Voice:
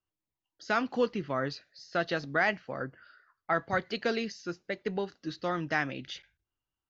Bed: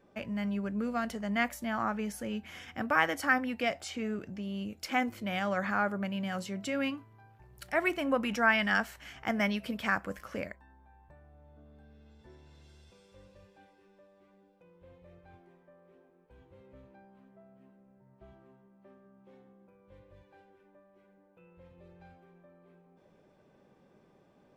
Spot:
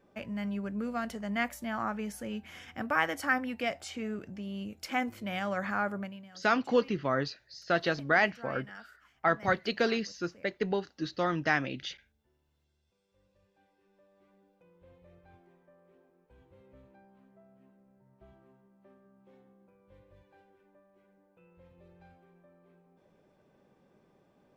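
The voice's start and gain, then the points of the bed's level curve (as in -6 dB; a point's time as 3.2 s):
5.75 s, +2.0 dB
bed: 5.99 s -1.5 dB
6.32 s -20 dB
12.81 s -20 dB
14.24 s -2.5 dB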